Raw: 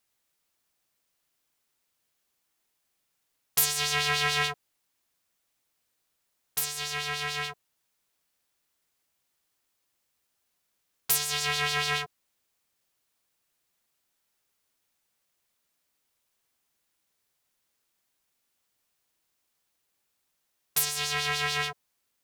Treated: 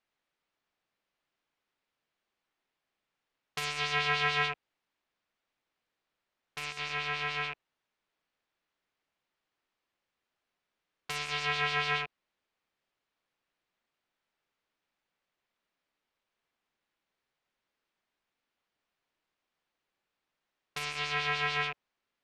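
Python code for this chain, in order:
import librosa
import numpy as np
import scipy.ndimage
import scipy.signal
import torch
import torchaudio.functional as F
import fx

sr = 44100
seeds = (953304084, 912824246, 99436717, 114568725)

y = fx.rattle_buzz(x, sr, strikes_db=-51.0, level_db=-25.0)
y = scipy.signal.sosfilt(scipy.signal.butter(2, 3000.0, 'lowpass', fs=sr, output='sos'), y)
y = fx.peak_eq(y, sr, hz=81.0, db=-6.5, octaves=1.5)
y = y * librosa.db_to_amplitude(-1.0)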